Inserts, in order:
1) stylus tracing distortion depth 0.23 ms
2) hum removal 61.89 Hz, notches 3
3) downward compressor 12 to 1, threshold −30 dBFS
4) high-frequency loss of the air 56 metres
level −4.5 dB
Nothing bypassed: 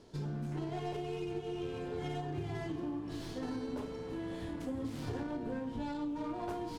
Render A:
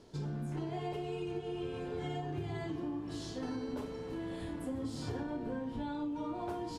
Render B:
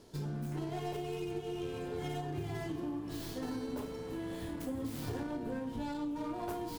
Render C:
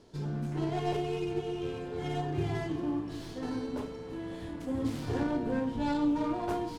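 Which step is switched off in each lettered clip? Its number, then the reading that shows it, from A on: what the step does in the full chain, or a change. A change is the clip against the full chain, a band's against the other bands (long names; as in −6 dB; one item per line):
1, 8 kHz band +2.0 dB
4, 8 kHz band +5.0 dB
3, average gain reduction 4.5 dB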